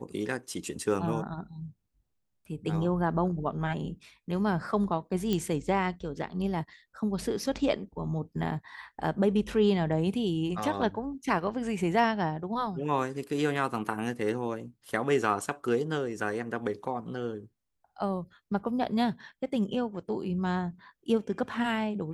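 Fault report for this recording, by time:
0:05.33: click −16 dBFS

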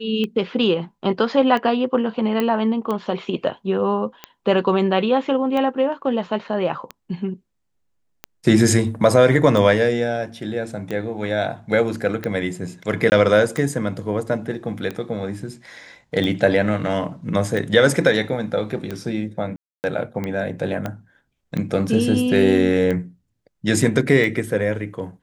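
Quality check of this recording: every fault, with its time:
scratch tick 45 rpm −14 dBFS
0:02.40: click −9 dBFS
0:13.10–0:13.12: drop-out 19 ms
0:19.56–0:19.84: drop-out 279 ms
0:20.86: click −13 dBFS

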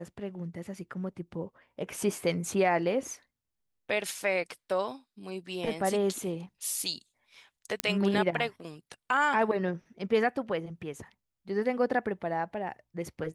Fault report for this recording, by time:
0:07.80: click −9 dBFS

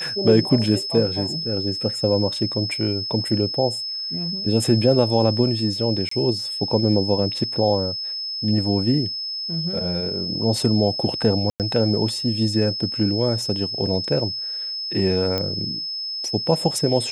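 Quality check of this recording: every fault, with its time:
whistle 5,200 Hz −26 dBFS
0:06.09–0:06.11: drop-out 24 ms
0:11.50–0:11.60: drop-out 98 ms
0:15.38: click −11 dBFS

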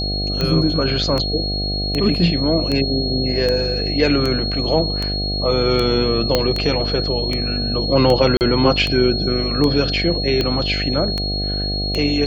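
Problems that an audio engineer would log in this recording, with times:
mains buzz 50 Hz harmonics 15 −24 dBFS
scratch tick 78 rpm −8 dBFS
whistle 4,300 Hz −23 dBFS
0:06.35: click −1 dBFS
0:08.37–0:08.41: drop-out 39 ms

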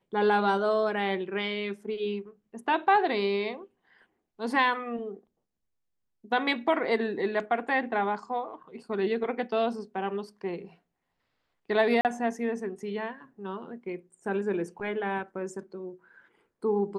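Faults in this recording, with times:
0:12.01–0:12.05: drop-out 38 ms

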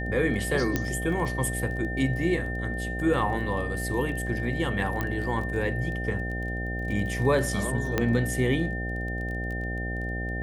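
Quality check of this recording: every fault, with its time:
mains buzz 60 Hz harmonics 13 −32 dBFS
surface crackle 16 per second −34 dBFS
whistle 1,800 Hz −34 dBFS
0:00.76: click −11 dBFS
0:05.01: click −15 dBFS
0:07.98: click −10 dBFS

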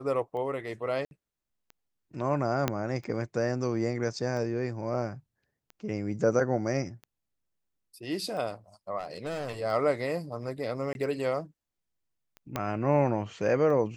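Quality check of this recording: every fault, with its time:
scratch tick 45 rpm −31 dBFS
0:01.05–0:01.11: drop-out 61 ms
0:02.68: click −11 dBFS
0:08.98–0:09.61: clipping −30.5 dBFS
0:10.93–0:10.95: drop-out 21 ms
0:12.56: click −15 dBFS

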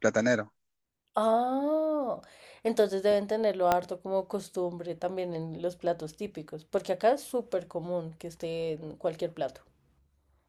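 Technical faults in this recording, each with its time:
0:03.72: click −10 dBFS

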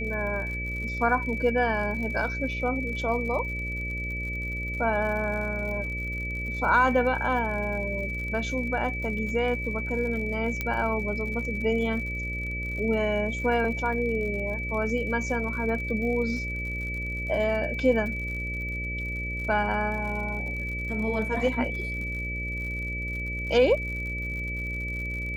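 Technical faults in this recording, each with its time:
mains buzz 60 Hz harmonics 10 −34 dBFS
surface crackle 74 per second −36 dBFS
whistle 2,300 Hz −32 dBFS
0:10.61: click −14 dBFS

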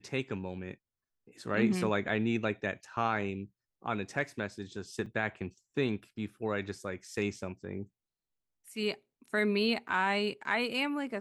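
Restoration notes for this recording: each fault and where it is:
0:05.06: drop-out 2.2 ms
0:09.88–0:09.89: drop-out 8.5 ms

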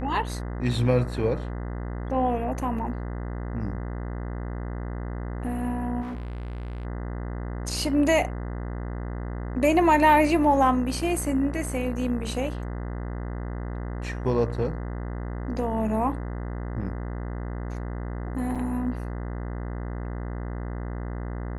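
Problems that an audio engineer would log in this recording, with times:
mains buzz 60 Hz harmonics 34 −32 dBFS
0:06.01–0:06.85: clipping −31 dBFS
0:18.55–0:18.56: drop-out 6.1 ms

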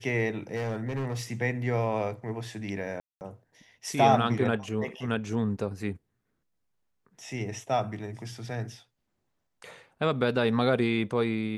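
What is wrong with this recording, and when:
0:00.55–0:01.23: clipping −27.5 dBFS
0:03.00–0:03.21: drop-out 209 ms

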